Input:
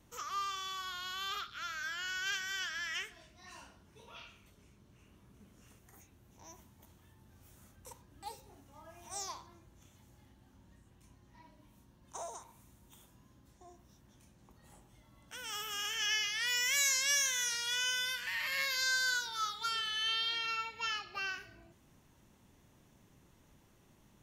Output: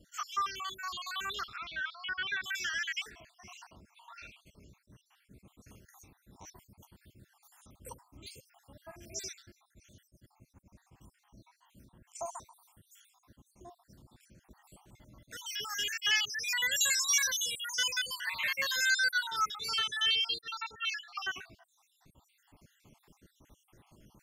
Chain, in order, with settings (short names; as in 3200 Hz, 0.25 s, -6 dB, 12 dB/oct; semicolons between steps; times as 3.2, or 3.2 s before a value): random spectral dropouts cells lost 64%; 1.56–2.44 steep low-pass 4000 Hz 36 dB/oct; attack slew limiter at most 490 dB/s; gain +6.5 dB